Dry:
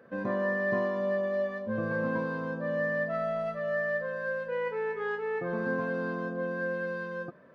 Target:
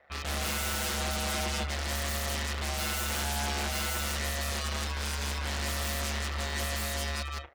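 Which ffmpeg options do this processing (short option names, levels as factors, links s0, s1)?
-filter_complex "[0:a]highpass=590,asetrate=52444,aresample=44100,atempo=0.840896,aeval=exprs='0.0841*(cos(1*acos(clip(val(0)/0.0841,-1,1)))-cos(1*PI/2))+0.0299*(cos(6*acos(clip(val(0)/0.0841,-1,1)))-cos(6*PI/2))+0.0168*(cos(7*acos(clip(val(0)/0.0841,-1,1)))-cos(7*PI/2))+0.00531*(cos(8*acos(clip(val(0)/0.0841,-1,1)))-cos(8*PI/2))':c=same,asplit=2[s0][s1];[s1]aecho=0:1:163.3|195.3:0.891|0.251[s2];[s0][s2]amix=inputs=2:normalize=0,aeval=exprs='val(0)*sin(2*PI*72*n/s)':c=same,aeval=exprs='0.0178*(abs(mod(val(0)/0.0178+3,4)-2)-1)':c=same,volume=2.66"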